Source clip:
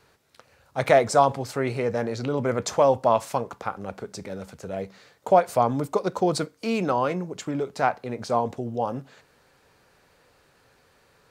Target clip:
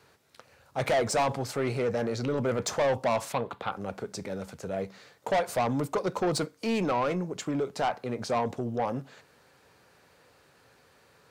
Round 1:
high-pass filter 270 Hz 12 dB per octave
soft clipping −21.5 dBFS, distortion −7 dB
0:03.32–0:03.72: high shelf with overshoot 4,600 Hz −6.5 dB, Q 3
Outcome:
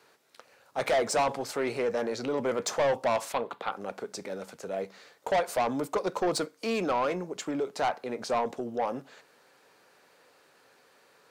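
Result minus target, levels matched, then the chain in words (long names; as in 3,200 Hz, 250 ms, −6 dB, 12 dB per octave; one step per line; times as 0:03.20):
125 Hz band −9.5 dB
high-pass filter 71 Hz 12 dB per octave
soft clipping −21.5 dBFS, distortion −7 dB
0:03.32–0:03.72: high shelf with overshoot 4,600 Hz −6.5 dB, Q 3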